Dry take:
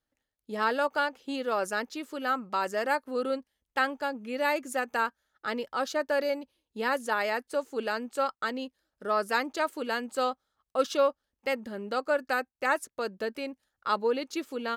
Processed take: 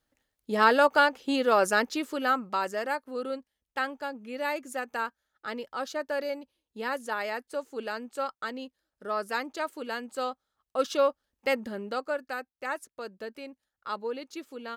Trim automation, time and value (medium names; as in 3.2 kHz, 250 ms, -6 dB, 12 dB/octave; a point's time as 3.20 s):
1.96 s +6.5 dB
2.96 s -3.5 dB
10.30 s -3.5 dB
11.61 s +3.5 dB
12.28 s -6.5 dB